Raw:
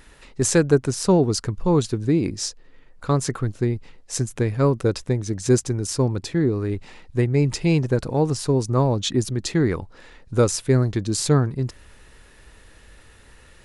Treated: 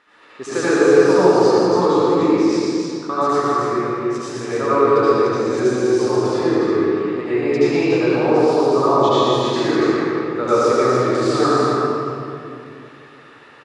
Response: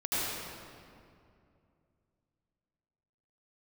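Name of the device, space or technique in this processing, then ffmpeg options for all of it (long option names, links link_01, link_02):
station announcement: -filter_complex "[0:a]highpass=370,lowpass=3800,equalizer=frequency=1200:width_type=o:width=0.28:gain=10,aecho=1:1:119.5|288.6:0.631|0.631[link_01];[1:a]atrim=start_sample=2205[link_02];[link_01][link_02]afir=irnorm=-1:irlink=0,volume=-3dB"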